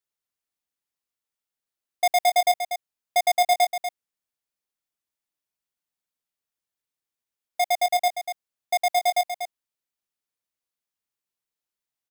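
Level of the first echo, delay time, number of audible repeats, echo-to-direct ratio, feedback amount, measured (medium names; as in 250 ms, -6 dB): -8.5 dB, 241 ms, 1, -8.5 dB, no regular repeats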